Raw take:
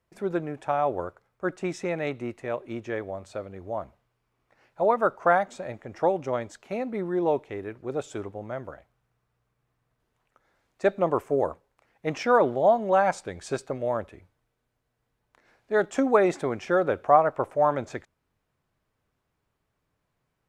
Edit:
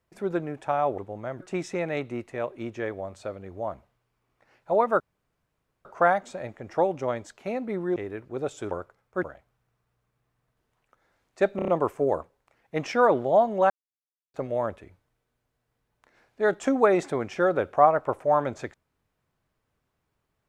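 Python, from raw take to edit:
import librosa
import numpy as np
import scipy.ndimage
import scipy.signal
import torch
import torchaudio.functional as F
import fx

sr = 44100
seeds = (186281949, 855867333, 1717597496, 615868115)

y = fx.edit(x, sr, fx.swap(start_s=0.98, length_s=0.52, other_s=8.24, other_length_s=0.42),
    fx.insert_room_tone(at_s=5.1, length_s=0.85),
    fx.cut(start_s=7.21, length_s=0.28),
    fx.stutter(start_s=10.99, slice_s=0.03, count=5),
    fx.silence(start_s=13.01, length_s=0.64), tone=tone)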